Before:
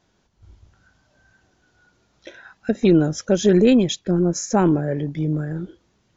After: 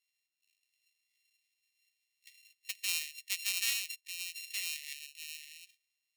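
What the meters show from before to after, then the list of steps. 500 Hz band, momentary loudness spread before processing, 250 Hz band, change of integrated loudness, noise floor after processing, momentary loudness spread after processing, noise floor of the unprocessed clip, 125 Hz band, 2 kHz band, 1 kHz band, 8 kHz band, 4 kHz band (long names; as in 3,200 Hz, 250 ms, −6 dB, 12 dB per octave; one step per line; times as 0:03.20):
below −40 dB, 14 LU, below −40 dB, −16.5 dB, below −85 dBFS, 15 LU, −66 dBFS, below −40 dB, −4.5 dB, −33.5 dB, can't be measured, −4.0 dB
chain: samples sorted by size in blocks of 32 samples
linear-phase brick-wall high-pass 1,800 Hz
harmonic generator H 3 −17 dB, 5 −36 dB, 7 −36 dB, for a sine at −6.5 dBFS
level −7.5 dB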